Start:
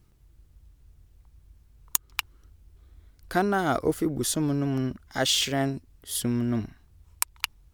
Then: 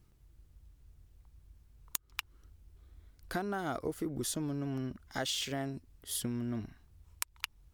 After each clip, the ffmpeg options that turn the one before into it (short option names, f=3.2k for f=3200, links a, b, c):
-af "acompressor=threshold=-29dB:ratio=4,volume=-4dB"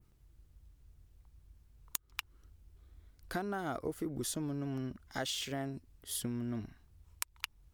-af "adynamicequalizer=threshold=0.00224:dfrequency=4800:dqfactor=0.75:tfrequency=4800:tqfactor=0.75:attack=5:release=100:ratio=0.375:range=2.5:mode=cutabove:tftype=bell,volume=-1.5dB"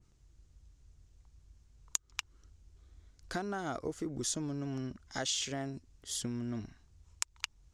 -af "lowpass=f=6.7k:t=q:w=2.7"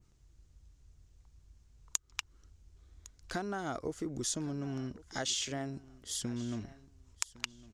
-af "aecho=1:1:1107|2214:0.1|0.024"